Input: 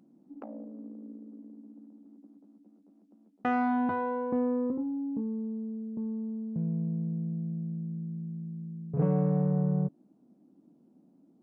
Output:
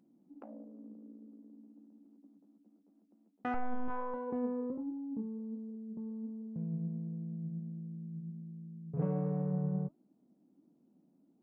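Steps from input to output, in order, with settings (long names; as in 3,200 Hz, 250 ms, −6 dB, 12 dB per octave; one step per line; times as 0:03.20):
0:03.54–0:04.14: linear-prediction vocoder at 8 kHz pitch kept
flanger 1.4 Hz, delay 1.9 ms, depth 4.9 ms, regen +84%
level −2.5 dB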